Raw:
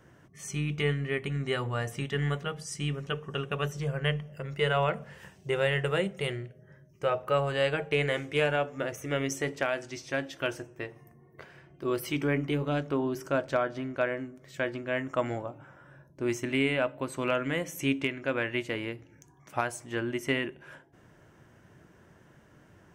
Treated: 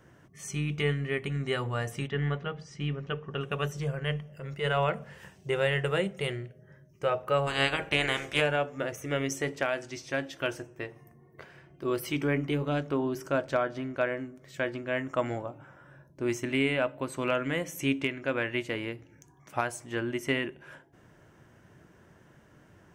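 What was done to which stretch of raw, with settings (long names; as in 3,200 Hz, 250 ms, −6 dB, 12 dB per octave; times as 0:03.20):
0:02.07–0:03.41: high-frequency loss of the air 190 metres
0:03.91–0:04.78: transient designer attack −7 dB, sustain −2 dB
0:07.46–0:08.40: ceiling on every frequency bin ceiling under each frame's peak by 18 dB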